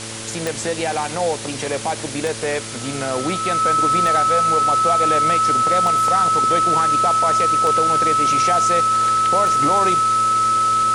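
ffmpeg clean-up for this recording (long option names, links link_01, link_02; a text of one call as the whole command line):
ffmpeg -i in.wav -af "adeclick=threshold=4,bandreject=frequency=111.5:width_type=h:width=4,bandreject=frequency=223:width_type=h:width=4,bandreject=frequency=334.5:width_type=h:width=4,bandreject=frequency=446:width_type=h:width=4,bandreject=frequency=557.5:width_type=h:width=4,bandreject=frequency=1300:width=30,afwtdn=0.035" out.wav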